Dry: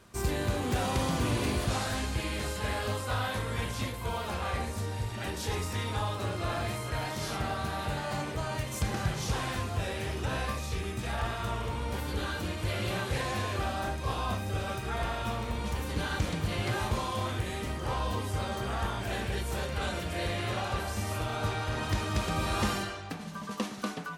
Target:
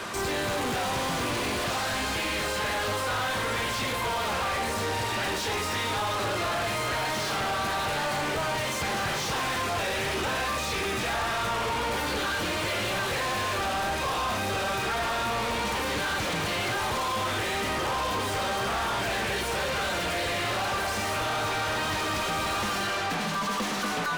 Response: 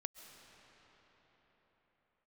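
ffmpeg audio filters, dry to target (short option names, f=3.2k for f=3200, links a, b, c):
-filter_complex "[0:a]acrossover=split=190|6600[a][b][c];[a]acompressor=threshold=-36dB:ratio=4[d];[b]acompressor=threshold=-37dB:ratio=4[e];[c]acompressor=threshold=-50dB:ratio=4[f];[d][e][f]amix=inputs=3:normalize=0,asplit=2[g][h];[h]highpass=f=720:p=1,volume=35dB,asoftclip=type=tanh:threshold=-21.5dB[i];[g][i]amix=inputs=2:normalize=0,lowpass=f=3.7k:p=1,volume=-6dB"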